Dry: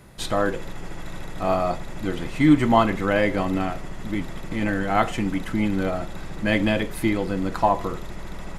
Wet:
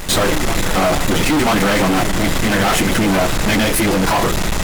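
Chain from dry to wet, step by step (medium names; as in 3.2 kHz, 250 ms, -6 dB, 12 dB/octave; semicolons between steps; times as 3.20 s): peaking EQ 8.9 kHz +7.5 dB 2.6 oct; band-stop 4.5 kHz, Q 28; in parallel at -0.5 dB: compressor with a negative ratio -26 dBFS, ratio -0.5; on the sum: plain phase-vocoder stretch 0.54×; fuzz box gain 34 dB, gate -37 dBFS; reverse echo 984 ms -10 dB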